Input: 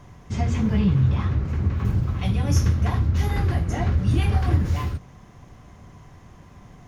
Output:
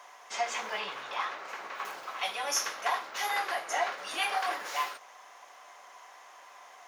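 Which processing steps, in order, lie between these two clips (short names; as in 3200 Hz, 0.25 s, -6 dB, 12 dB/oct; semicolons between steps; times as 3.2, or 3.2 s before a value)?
HPF 660 Hz 24 dB/oct; gain +4 dB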